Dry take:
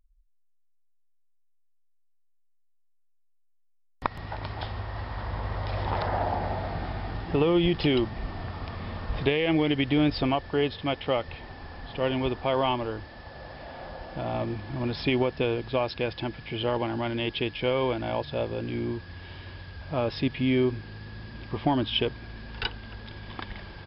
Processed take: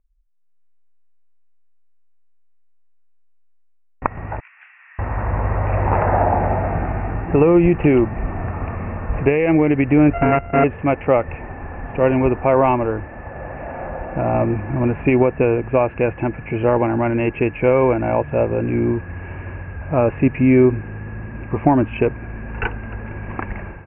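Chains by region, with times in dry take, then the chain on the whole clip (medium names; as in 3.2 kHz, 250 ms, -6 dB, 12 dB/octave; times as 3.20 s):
4.40–4.99 s: inverse Chebyshev high-pass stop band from 320 Hz, stop band 80 dB + detune thickener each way 58 cents
10.13–10.64 s: sorted samples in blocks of 64 samples + loudspeaker Doppler distortion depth 0.12 ms
whole clip: Chebyshev low-pass 2.7 kHz, order 8; treble shelf 2.1 kHz -8 dB; level rider gain up to 13 dB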